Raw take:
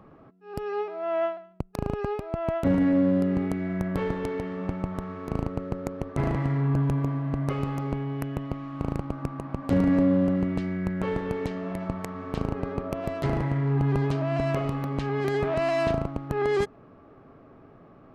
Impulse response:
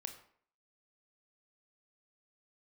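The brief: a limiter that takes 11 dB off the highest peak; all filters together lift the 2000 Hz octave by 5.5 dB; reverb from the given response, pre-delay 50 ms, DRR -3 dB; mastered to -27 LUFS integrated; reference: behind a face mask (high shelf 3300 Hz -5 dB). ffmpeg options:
-filter_complex "[0:a]equalizer=f=2k:t=o:g=8,alimiter=limit=-21.5dB:level=0:latency=1,asplit=2[a][b];[1:a]atrim=start_sample=2205,adelay=50[c];[b][c]afir=irnorm=-1:irlink=0,volume=6dB[d];[a][d]amix=inputs=2:normalize=0,highshelf=f=3.3k:g=-5,volume=-1dB"

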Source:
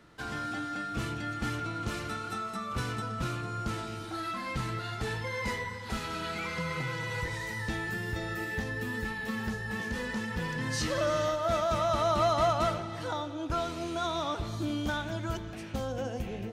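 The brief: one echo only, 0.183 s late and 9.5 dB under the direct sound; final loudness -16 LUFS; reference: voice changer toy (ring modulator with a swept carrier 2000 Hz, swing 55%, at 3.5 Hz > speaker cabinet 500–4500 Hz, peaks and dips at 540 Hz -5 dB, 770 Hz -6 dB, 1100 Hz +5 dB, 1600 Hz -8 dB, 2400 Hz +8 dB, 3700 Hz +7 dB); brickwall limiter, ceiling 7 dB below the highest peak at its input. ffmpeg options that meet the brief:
-af "alimiter=limit=-24dB:level=0:latency=1,aecho=1:1:183:0.335,aeval=exprs='val(0)*sin(2*PI*2000*n/s+2000*0.55/3.5*sin(2*PI*3.5*n/s))':c=same,highpass=500,equalizer=f=540:t=q:w=4:g=-5,equalizer=f=770:t=q:w=4:g=-6,equalizer=f=1.1k:t=q:w=4:g=5,equalizer=f=1.6k:t=q:w=4:g=-8,equalizer=f=2.4k:t=q:w=4:g=8,equalizer=f=3.7k:t=q:w=4:g=7,lowpass=f=4.5k:w=0.5412,lowpass=f=4.5k:w=1.3066,volume=15.5dB"

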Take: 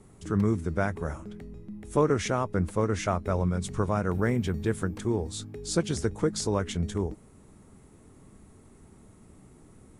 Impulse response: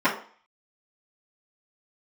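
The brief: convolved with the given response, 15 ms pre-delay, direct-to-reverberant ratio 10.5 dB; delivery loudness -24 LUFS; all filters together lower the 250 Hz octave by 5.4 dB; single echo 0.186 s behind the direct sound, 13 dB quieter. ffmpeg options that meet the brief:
-filter_complex "[0:a]equalizer=f=250:t=o:g=-8,aecho=1:1:186:0.224,asplit=2[a][b];[1:a]atrim=start_sample=2205,adelay=15[c];[b][c]afir=irnorm=-1:irlink=0,volume=-28dB[d];[a][d]amix=inputs=2:normalize=0,volume=6.5dB"

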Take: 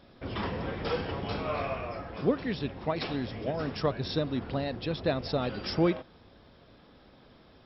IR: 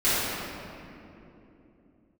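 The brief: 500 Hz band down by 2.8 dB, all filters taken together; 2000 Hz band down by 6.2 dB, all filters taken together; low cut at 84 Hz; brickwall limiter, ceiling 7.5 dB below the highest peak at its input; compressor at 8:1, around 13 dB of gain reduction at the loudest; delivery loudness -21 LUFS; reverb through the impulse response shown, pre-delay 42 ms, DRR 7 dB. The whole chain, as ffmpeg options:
-filter_complex "[0:a]highpass=84,equalizer=f=500:t=o:g=-3,equalizer=f=2k:t=o:g=-8,acompressor=threshold=-35dB:ratio=8,alimiter=level_in=7.5dB:limit=-24dB:level=0:latency=1,volume=-7.5dB,asplit=2[a][b];[1:a]atrim=start_sample=2205,adelay=42[c];[b][c]afir=irnorm=-1:irlink=0,volume=-24dB[d];[a][d]amix=inputs=2:normalize=0,volume=20dB"

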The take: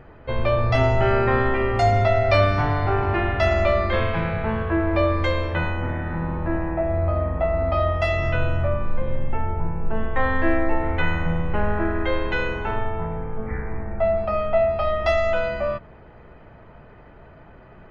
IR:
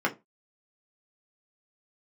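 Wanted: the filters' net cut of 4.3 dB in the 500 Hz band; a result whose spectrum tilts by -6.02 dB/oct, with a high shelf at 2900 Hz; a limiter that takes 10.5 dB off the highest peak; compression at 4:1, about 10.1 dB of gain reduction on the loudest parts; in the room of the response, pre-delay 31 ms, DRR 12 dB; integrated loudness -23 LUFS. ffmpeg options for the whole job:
-filter_complex "[0:a]equalizer=f=500:t=o:g=-6,highshelf=f=2.9k:g=-4.5,acompressor=threshold=-28dB:ratio=4,alimiter=level_in=4dB:limit=-24dB:level=0:latency=1,volume=-4dB,asplit=2[a][b];[1:a]atrim=start_sample=2205,adelay=31[c];[b][c]afir=irnorm=-1:irlink=0,volume=-23.5dB[d];[a][d]amix=inputs=2:normalize=0,volume=14.5dB"

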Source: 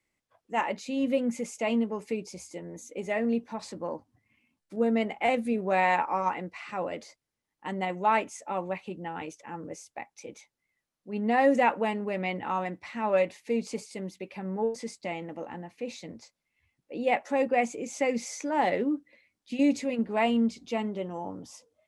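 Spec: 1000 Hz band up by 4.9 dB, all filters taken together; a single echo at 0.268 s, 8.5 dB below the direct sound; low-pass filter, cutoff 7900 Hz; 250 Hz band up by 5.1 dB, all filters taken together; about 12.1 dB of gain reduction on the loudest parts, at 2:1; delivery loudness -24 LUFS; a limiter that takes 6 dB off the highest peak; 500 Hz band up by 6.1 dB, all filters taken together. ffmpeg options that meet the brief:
-af "lowpass=7.9k,equalizer=f=250:t=o:g=4.5,equalizer=f=500:t=o:g=5,equalizer=f=1k:t=o:g=4,acompressor=threshold=-36dB:ratio=2,alimiter=level_in=0.5dB:limit=-24dB:level=0:latency=1,volume=-0.5dB,aecho=1:1:268:0.376,volume=11.5dB"

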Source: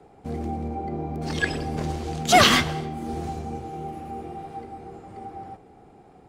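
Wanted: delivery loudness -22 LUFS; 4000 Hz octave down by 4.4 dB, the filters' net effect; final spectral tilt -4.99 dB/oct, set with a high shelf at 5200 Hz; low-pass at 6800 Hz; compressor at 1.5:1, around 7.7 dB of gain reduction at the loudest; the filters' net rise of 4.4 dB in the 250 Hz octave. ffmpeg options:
-af "lowpass=6.8k,equalizer=f=250:t=o:g=5.5,equalizer=f=4k:t=o:g=-8.5,highshelf=f=5.2k:g=7,acompressor=threshold=-32dB:ratio=1.5,volume=8.5dB"

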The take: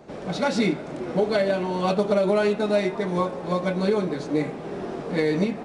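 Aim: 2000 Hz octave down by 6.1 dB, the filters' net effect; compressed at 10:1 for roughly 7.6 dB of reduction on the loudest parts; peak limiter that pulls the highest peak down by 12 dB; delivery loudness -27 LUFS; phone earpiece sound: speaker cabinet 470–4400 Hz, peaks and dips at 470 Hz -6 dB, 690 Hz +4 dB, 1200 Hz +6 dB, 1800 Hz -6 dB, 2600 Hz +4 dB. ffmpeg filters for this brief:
-af "equalizer=f=2k:t=o:g=-8,acompressor=threshold=-25dB:ratio=10,alimiter=level_in=4.5dB:limit=-24dB:level=0:latency=1,volume=-4.5dB,highpass=470,equalizer=f=470:t=q:w=4:g=-6,equalizer=f=690:t=q:w=4:g=4,equalizer=f=1.2k:t=q:w=4:g=6,equalizer=f=1.8k:t=q:w=4:g=-6,equalizer=f=2.6k:t=q:w=4:g=4,lowpass=f=4.4k:w=0.5412,lowpass=f=4.4k:w=1.3066,volume=13.5dB"

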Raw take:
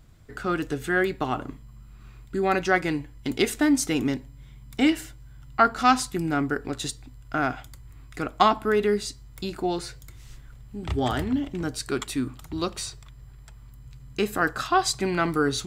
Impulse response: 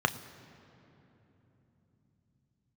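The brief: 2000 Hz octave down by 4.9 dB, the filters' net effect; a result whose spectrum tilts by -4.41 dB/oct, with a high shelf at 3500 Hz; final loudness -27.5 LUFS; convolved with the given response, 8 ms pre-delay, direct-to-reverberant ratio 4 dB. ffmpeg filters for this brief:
-filter_complex "[0:a]equalizer=f=2k:t=o:g=-8.5,highshelf=f=3.5k:g=5,asplit=2[a][b];[1:a]atrim=start_sample=2205,adelay=8[c];[b][c]afir=irnorm=-1:irlink=0,volume=-15dB[d];[a][d]amix=inputs=2:normalize=0,volume=-3dB"

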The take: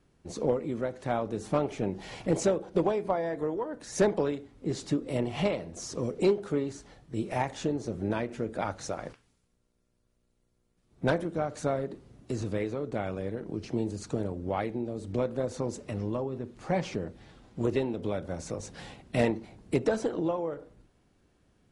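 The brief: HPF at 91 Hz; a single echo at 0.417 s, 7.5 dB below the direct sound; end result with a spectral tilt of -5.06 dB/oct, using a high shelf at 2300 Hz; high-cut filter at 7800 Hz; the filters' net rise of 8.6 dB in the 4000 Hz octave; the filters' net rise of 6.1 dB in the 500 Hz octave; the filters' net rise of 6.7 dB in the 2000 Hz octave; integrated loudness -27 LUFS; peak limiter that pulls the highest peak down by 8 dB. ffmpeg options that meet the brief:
-af "highpass=91,lowpass=7.8k,equalizer=f=500:t=o:g=7,equalizer=f=2k:t=o:g=4.5,highshelf=f=2.3k:g=4,equalizer=f=4k:t=o:g=6,alimiter=limit=-15.5dB:level=0:latency=1,aecho=1:1:417:0.422,volume=1.5dB"

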